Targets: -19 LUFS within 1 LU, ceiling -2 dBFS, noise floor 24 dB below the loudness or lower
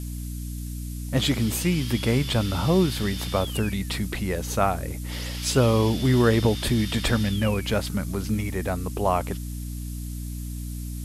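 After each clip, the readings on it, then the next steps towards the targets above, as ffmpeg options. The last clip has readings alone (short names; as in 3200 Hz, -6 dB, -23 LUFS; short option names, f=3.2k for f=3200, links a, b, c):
hum 60 Hz; harmonics up to 300 Hz; hum level -29 dBFS; noise floor -33 dBFS; noise floor target -50 dBFS; loudness -25.5 LUFS; peak -8.5 dBFS; loudness target -19.0 LUFS
-> -af "bandreject=f=60:t=h:w=4,bandreject=f=120:t=h:w=4,bandreject=f=180:t=h:w=4,bandreject=f=240:t=h:w=4,bandreject=f=300:t=h:w=4"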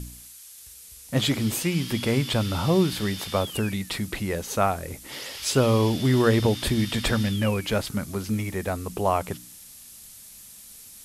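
hum none; noise floor -46 dBFS; noise floor target -49 dBFS
-> -af "afftdn=nr=6:nf=-46"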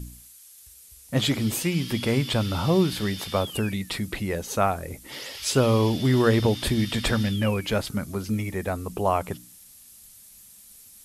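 noise floor -50 dBFS; loudness -25.0 LUFS; peak -9.0 dBFS; loudness target -19.0 LUFS
-> -af "volume=6dB"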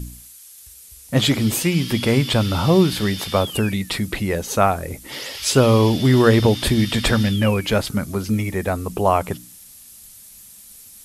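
loudness -19.0 LUFS; peak -3.0 dBFS; noise floor -44 dBFS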